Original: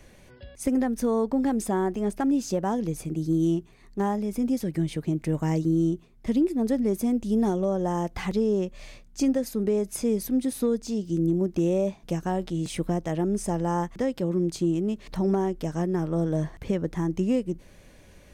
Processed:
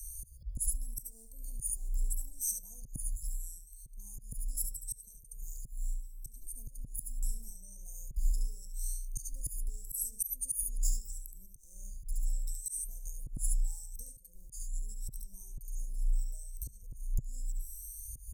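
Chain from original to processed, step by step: drifting ripple filter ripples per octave 1.9, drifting +0.78 Hz, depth 21 dB; in parallel at -2.5 dB: peak limiter -17 dBFS, peak gain reduction 8.5 dB; on the sum: one-sided clip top -14 dBFS, bottom -9 dBFS; compression 4:1, threshold -28 dBFS, peak gain reduction 13 dB; inverse Chebyshev band-stop 150–2900 Hz, stop band 60 dB; peaking EQ 2.5 kHz -14 dB 0.67 oct; delay 71 ms -7 dB; slow attack 235 ms; ten-band graphic EQ 125 Hz +11 dB, 250 Hz +10 dB, 500 Hz +9 dB; trim +13 dB

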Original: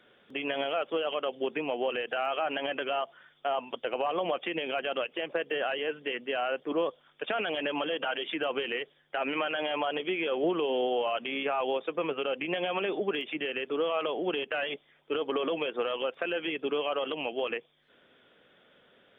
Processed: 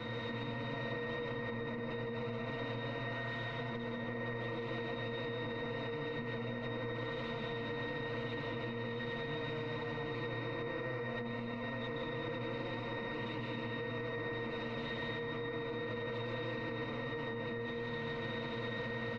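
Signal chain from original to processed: one-bit comparator; tilt shelf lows +5 dB, about 940 Hz; in parallel at -4.5 dB: integer overflow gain 33 dB; on the sum: low-pass 3 kHz 12 dB/octave; pitch-class resonator A#, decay 0.34 s; reverberation RT60 2.5 s, pre-delay 80 ms, DRR -2.5 dB; peak limiter -38 dBFS, peak gain reduction 12 dB; bass shelf 140 Hz +6 dB; comb 5.9 ms, depth 71%; spectrum-flattening compressor 2:1; trim +6.5 dB

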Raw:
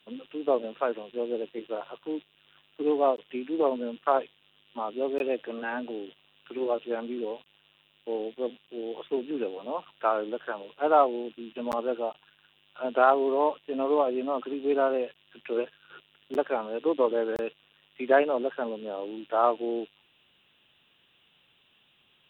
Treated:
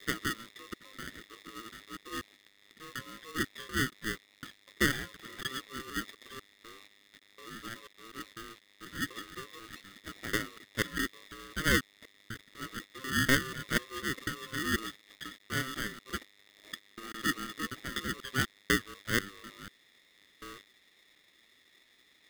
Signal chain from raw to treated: slices played last to first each 246 ms, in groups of 4; two resonant band-passes 1.7 kHz, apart 1.3 oct; polarity switched at an audio rate 790 Hz; trim +6 dB

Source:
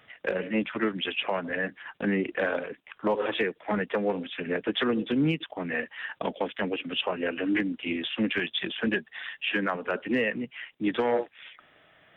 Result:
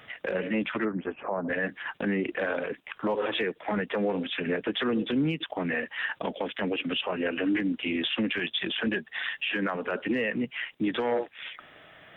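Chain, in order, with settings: 0.84–1.48 s: low-pass 1.5 kHz -> 1.1 kHz 24 dB/octave; in parallel at +2 dB: compression, threshold -36 dBFS, peak gain reduction 14 dB; on the sum: peak limiter -19.5 dBFS, peak gain reduction 6.5 dB

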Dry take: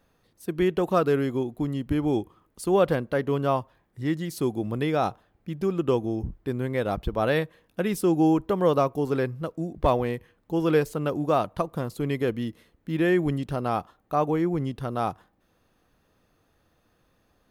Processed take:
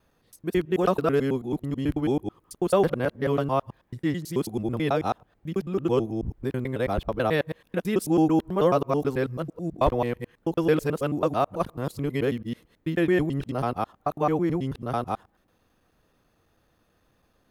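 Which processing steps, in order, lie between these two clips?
time reversed locally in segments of 109 ms

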